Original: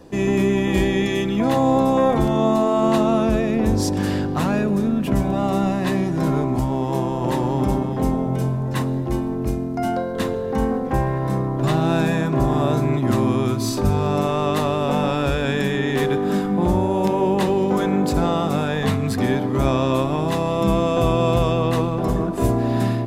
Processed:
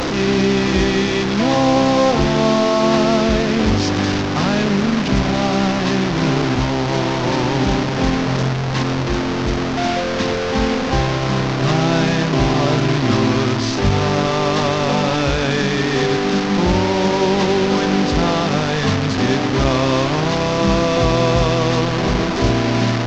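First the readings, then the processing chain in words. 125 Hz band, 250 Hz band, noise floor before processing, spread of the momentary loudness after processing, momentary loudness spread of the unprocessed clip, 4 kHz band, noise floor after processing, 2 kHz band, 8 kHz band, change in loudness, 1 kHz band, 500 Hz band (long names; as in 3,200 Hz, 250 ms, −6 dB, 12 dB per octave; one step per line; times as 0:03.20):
+2.5 dB, +2.5 dB, −24 dBFS, 4 LU, 5 LU, +11.0 dB, −20 dBFS, +8.5 dB, +7.0 dB, +3.5 dB, +3.5 dB, +3.0 dB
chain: linear delta modulator 32 kbit/s, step −17 dBFS
level +2.5 dB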